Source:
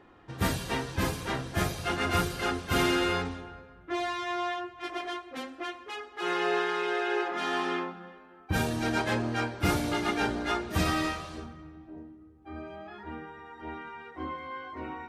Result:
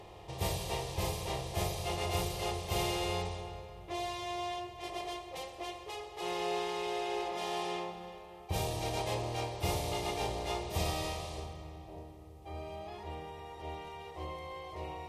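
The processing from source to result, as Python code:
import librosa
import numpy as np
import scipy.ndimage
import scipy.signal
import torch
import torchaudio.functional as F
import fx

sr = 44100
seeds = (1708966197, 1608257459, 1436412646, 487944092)

y = fx.bin_compress(x, sr, power=0.6)
y = fx.fixed_phaser(y, sr, hz=620.0, stages=4)
y = y * 10.0 ** (-5.0 / 20.0)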